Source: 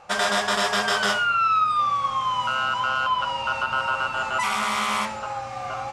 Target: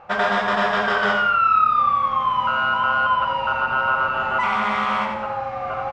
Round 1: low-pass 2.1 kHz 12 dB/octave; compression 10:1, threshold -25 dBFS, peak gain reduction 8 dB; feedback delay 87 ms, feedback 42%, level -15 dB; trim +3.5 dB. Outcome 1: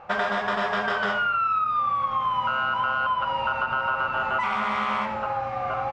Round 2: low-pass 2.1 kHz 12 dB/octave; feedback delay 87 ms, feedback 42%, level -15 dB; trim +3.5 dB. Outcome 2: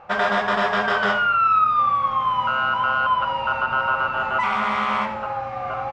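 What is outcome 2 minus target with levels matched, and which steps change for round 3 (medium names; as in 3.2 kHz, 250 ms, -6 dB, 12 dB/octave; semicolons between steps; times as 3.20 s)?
echo-to-direct -8.5 dB
change: feedback delay 87 ms, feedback 42%, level -6.5 dB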